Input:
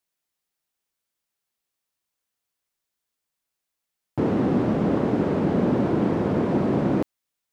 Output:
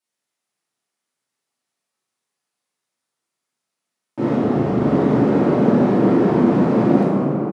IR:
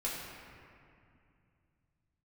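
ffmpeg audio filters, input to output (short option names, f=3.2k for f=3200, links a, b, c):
-filter_complex "[0:a]highpass=f=130:w=0.5412,highpass=f=130:w=1.3066,asplit=3[a][b][c];[a]afade=t=out:st=4.36:d=0.02[d];[b]aeval=exprs='val(0)*sin(2*PI*42*n/s)':c=same,afade=t=in:st=4.36:d=0.02,afade=t=out:st=4.79:d=0.02[e];[c]afade=t=in:st=4.79:d=0.02[f];[d][e][f]amix=inputs=3:normalize=0,asplit=2[g][h];[h]adelay=41,volume=-6.5dB[i];[g][i]amix=inputs=2:normalize=0[j];[1:a]atrim=start_sample=2205,asetrate=22491,aresample=44100[k];[j][k]afir=irnorm=-1:irlink=0,volume=-3.5dB"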